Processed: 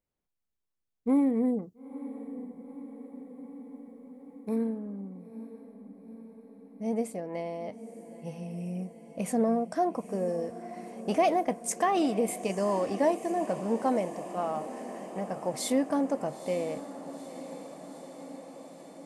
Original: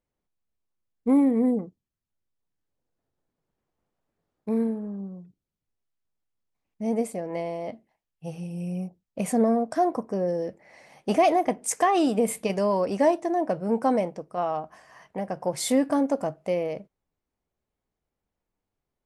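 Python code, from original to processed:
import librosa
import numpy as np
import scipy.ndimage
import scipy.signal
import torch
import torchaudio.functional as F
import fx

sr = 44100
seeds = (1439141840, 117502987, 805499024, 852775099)

y = fx.high_shelf(x, sr, hz=4800.0, db=11.0, at=(1.62, 4.56))
y = fx.quant_float(y, sr, bits=6, at=(11.23, 12.01))
y = fx.echo_diffused(y, sr, ms=919, feedback_pct=70, wet_db=-13.5)
y = y * 10.0 ** (-4.5 / 20.0)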